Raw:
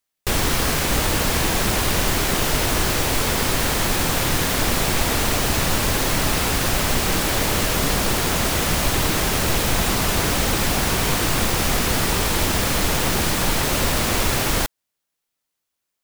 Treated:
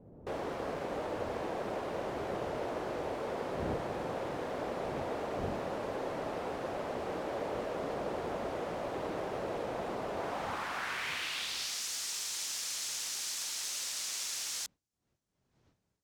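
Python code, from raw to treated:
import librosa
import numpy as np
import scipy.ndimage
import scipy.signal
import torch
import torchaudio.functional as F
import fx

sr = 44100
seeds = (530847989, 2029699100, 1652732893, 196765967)

y = fx.dmg_wind(x, sr, seeds[0], corner_hz=100.0, level_db=-25.0)
y = fx.filter_sweep_bandpass(y, sr, from_hz=550.0, to_hz=6200.0, start_s=10.12, end_s=11.85, q=1.6)
y = F.gain(torch.from_numpy(y), -7.5).numpy()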